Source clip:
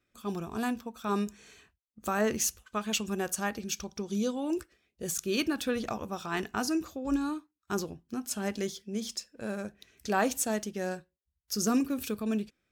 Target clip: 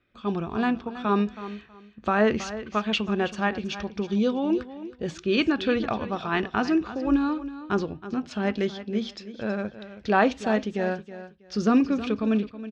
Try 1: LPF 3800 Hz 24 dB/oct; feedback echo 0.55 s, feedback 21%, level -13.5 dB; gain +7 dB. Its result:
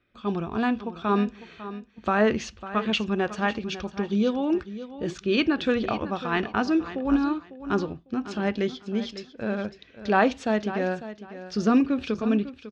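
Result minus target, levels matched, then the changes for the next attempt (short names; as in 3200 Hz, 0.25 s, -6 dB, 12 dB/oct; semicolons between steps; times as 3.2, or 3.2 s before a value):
echo 0.228 s late
change: feedback echo 0.322 s, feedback 21%, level -13.5 dB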